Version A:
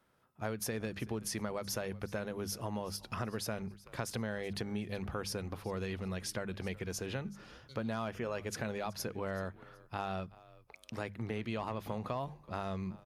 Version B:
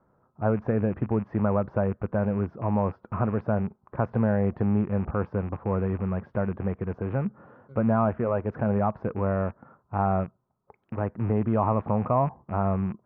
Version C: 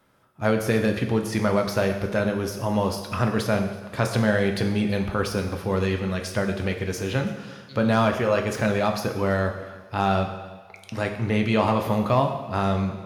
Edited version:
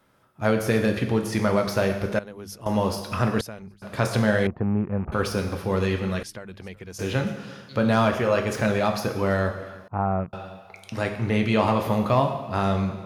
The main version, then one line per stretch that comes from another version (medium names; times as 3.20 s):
C
2.19–2.66 s: from A
3.41–3.82 s: from A
4.47–5.12 s: from B
6.23–6.99 s: from A
9.88–10.33 s: from B